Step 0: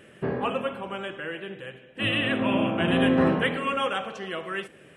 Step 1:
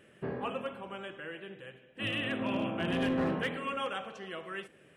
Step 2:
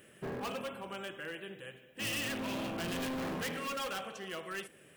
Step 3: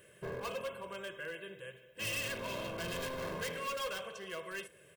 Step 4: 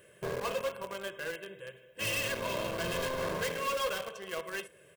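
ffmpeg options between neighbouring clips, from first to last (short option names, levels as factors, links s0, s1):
-af "volume=6.68,asoftclip=hard,volume=0.15,volume=0.376"
-af "volume=56.2,asoftclip=hard,volume=0.0178,aemphasis=mode=production:type=50fm"
-af "aecho=1:1:1.9:0.7,volume=0.708"
-filter_complex "[0:a]equalizer=f=650:t=o:w=2:g=3,asplit=2[s0][s1];[s1]acrusher=bits=5:mix=0:aa=0.000001,volume=0.473[s2];[s0][s2]amix=inputs=2:normalize=0"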